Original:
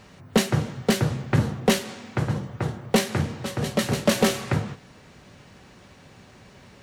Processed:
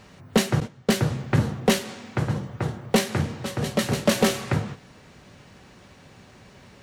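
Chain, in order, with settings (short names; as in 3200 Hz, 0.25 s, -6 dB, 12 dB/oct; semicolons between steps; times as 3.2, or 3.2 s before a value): 0.6–1.04 gate -29 dBFS, range -14 dB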